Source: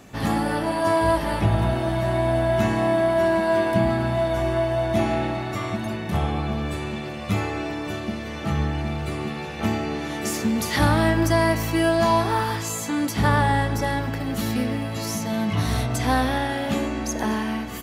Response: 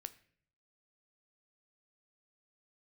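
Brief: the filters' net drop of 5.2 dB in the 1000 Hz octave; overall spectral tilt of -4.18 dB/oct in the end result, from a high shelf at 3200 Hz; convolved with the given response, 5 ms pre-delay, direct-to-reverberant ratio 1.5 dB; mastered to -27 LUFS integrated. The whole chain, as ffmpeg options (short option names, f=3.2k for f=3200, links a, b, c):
-filter_complex "[0:a]equalizer=f=1k:t=o:g=-7.5,highshelf=f=3.2k:g=8,asplit=2[a][b];[1:a]atrim=start_sample=2205,adelay=5[c];[b][c]afir=irnorm=-1:irlink=0,volume=3dB[d];[a][d]amix=inputs=2:normalize=0,volume=-4.5dB"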